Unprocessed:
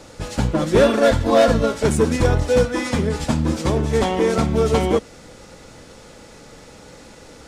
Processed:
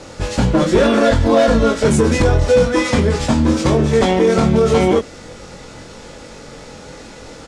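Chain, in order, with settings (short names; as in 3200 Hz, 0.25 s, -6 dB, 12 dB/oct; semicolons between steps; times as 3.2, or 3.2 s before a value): LPF 8500 Hz 12 dB/oct; doubler 22 ms -4 dB; maximiser +9 dB; gain -3.5 dB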